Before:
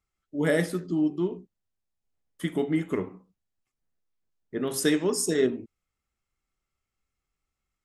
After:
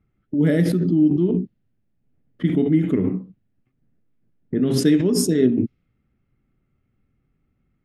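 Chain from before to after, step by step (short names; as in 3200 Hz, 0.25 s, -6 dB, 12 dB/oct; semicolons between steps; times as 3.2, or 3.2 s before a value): low-pass opened by the level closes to 1800 Hz, open at -22.5 dBFS; graphic EQ 125/250/1000/8000 Hz +11/+10/-9/-12 dB; in parallel at +1.5 dB: negative-ratio compressor -30 dBFS, ratio -0.5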